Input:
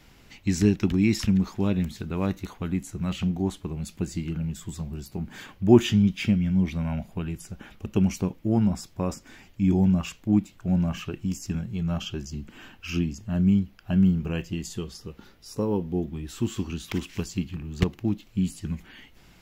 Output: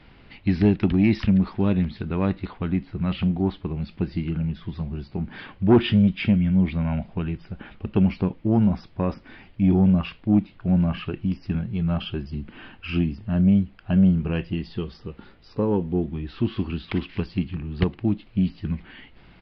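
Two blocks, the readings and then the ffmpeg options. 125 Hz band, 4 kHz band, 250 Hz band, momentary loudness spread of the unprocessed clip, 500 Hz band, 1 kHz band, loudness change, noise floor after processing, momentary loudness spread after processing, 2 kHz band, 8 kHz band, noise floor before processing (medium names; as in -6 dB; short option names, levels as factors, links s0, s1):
+3.0 dB, +0.5 dB, +3.0 dB, 13 LU, +2.0 dB, +3.5 dB, +2.5 dB, -51 dBFS, 13 LU, +2.5 dB, under -25 dB, -55 dBFS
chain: -af "lowpass=3300,aresample=11025,asoftclip=type=tanh:threshold=0.237,aresample=44100,volume=1.58"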